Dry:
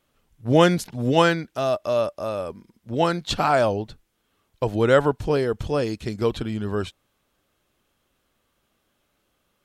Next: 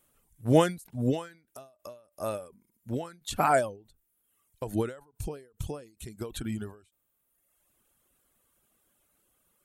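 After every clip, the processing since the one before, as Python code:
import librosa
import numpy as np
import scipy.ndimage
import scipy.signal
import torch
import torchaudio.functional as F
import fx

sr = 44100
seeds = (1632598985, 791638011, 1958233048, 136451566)

y = fx.high_shelf_res(x, sr, hz=6800.0, db=11.0, q=1.5)
y = fx.dereverb_blind(y, sr, rt60_s=0.97)
y = fx.end_taper(y, sr, db_per_s=140.0)
y = y * 10.0 ** (-2.5 / 20.0)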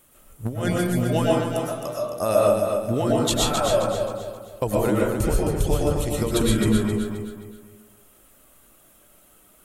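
y = fx.over_compress(x, sr, threshold_db=-32.0, ratio=-1.0)
y = fx.echo_feedback(y, sr, ms=264, feedback_pct=36, wet_db=-6)
y = fx.rev_freeverb(y, sr, rt60_s=0.68, hf_ratio=0.3, predelay_ms=80, drr_db=-3.5)
y = y * 10.0 ** (7.0 / 20.0)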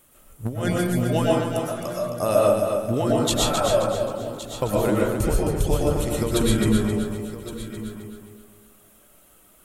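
y = x + 10.0 ** (-14.0 / 20.0) * np.pad(x, (int(1116 * sr / 1000.0), 0))[:len(x)]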